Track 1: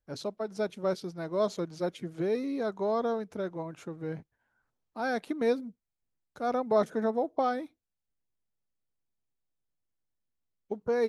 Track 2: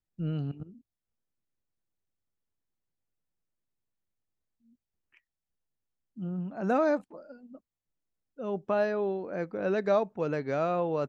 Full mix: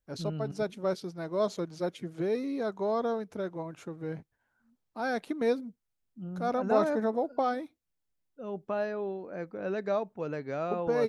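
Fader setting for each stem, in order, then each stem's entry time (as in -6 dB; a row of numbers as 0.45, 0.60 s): -0.5, -4.5 dB; 0.00, 0.00 s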